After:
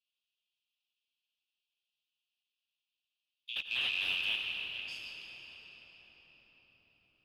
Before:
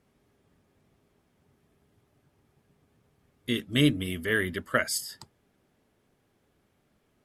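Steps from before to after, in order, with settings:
loose part that buzzes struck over −39 dBFS, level −21 dBFS
Butterworth high-pass 2,600 Hz 96 dB per octave
brickwall limiter −24 dBFS, peak gain reduction 9 dB
0:03.56–0:04.36: leveller curve on the samples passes 5
high-frequency loss of the air 300 metres
convolution reverb RT60 6.1 s, pre-delay 84 ms, DRR 1.5 dB

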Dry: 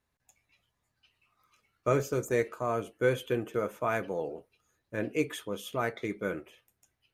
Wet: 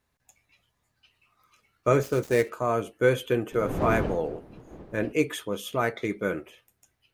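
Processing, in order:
0:02.03–0:02.50: gap after every zero crossing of 0.077 ms
0:03.51–0:05.11: wind on the microphone 370 Hz −37 dBFS
level +5 dB

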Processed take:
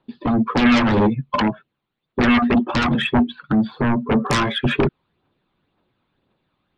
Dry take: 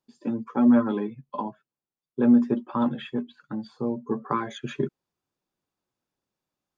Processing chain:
Butterworth low-pass 4,100 Hz 72 dB per octave
in parallel at −8 dB: sine wavefolder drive 19 dB, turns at −9 dBFS
on the sum: phase shifter 1.9 Hz, delay 1 ms, feedback 38%

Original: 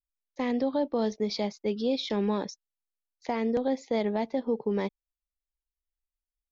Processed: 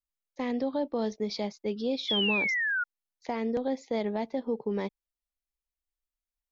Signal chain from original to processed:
sound drawn into the spectrogram fall, 0:02.08–0:02.84, 1,400–3,500 Hz −26 dBFS
level −2.5 dB

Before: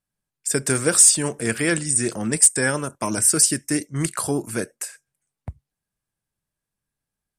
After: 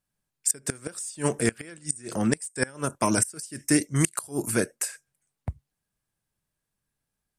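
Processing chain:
0:03.90–0:04.50: high-shelf EQ 3,900 Hz → 7,700 Hz +11.5 dB
gate with flip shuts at −9 dBFS, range −25 dB
level +1.5 dB

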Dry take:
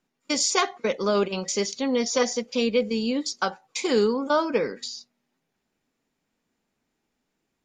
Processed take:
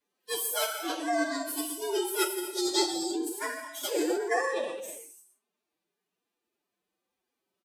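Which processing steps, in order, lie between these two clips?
partials spread apart or drawn together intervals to 119%
high-pass filter 300 Hz 6 dB per octave
reverb whose tail is shaped and stops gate 390 ms falling, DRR −1 dB
phase-vocoder pitch shift with formants kept +7.5 semitones
slap from a distant wall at 21 metres, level −28 dB
level −4.5 dB

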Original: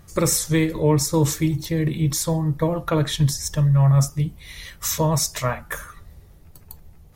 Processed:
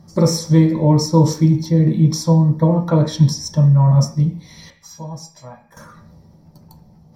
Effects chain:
0:04.70–0:05.77: tuned comb filter 820 Hz, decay 0.17 s, harmonics all, mix 90%
convolution reverb RT60 0.40 s, pre-delay 3 ms, DRR 1.5 dB
level −9.5 dB

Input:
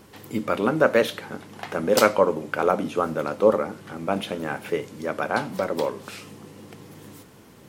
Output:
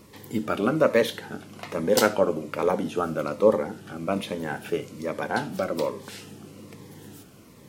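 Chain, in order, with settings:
flutter between parallel walls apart 11.6 metres, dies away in 0.2 s
phaser whose notches keep moving one way falling 1.2 Hz

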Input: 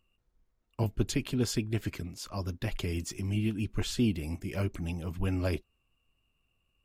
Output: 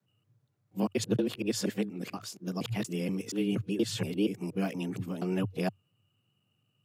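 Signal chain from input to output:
reversed piece by piece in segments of 237 ms
frequency shifter +93 Hz

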